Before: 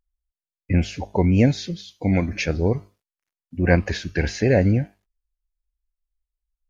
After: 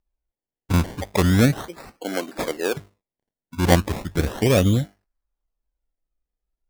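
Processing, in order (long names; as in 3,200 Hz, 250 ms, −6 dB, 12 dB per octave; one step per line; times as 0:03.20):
0:01.61–0:02.77: high-pass filter 320 Hz 24 dB per octave
sample-and-hold swept by an LFO 24×, swing 100% 0.36 Hz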